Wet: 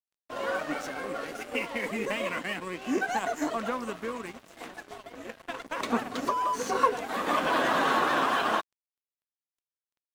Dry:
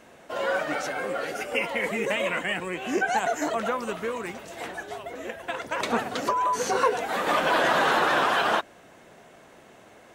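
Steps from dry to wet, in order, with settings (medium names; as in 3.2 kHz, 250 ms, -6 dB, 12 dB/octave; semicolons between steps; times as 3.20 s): small resonant body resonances 260/1100 Hz, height 8 dB, ringing for 35 ms; crossover distortion -39.5 dBFS; trim -4 dB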